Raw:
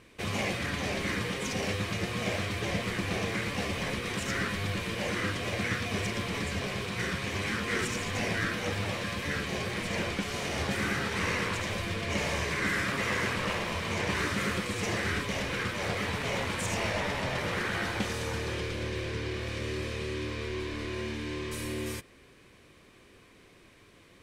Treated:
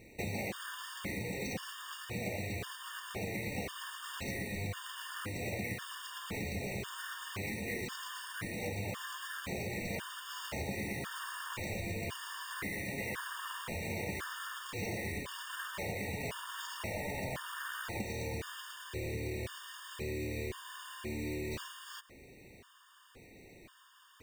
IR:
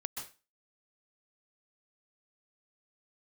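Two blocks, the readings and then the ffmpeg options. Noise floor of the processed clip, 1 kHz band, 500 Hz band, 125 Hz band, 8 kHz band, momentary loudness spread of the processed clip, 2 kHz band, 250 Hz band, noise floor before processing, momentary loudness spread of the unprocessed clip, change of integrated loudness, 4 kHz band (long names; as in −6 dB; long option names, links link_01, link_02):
−58 dBFS, −8.5 dB, −8.0 dB, −7.5 dB, −6.0 dB, 7 LU, −9.0 dB, −8.0 dB, −57 dBFS, 5 LU, −8.0 dB, −9.0 dB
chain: -af "acompressor=threshold=-36dB:ratio=6,acrusher=samples=4:mix=1:aa=0.000001,afftfilt=real='re*gt(sin(2*PI*0.95*pts/sr)*(1-2*mod(floor(b*sr/1024/920),2)),0)':imag='im*gt(sin(2*PI*0.95*pts/sr)*(1-2*mod(floor(b*sr/1024/920),2)),0)':win_size=1024:overlap=0.75,volume=2dB"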